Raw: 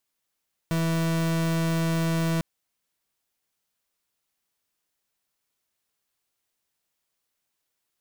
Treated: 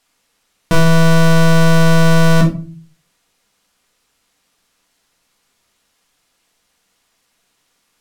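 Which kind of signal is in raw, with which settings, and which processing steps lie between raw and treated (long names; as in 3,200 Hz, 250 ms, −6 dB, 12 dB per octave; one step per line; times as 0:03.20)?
pulse wave 164 Hz, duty 39% −24.5 dBFS 1.70 s
rectangular room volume 210 cubic metres, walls furnished, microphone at 1.8 metres
boost into a limiter +13.5 dB
linearly interpolated sample-rate reduction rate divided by 2×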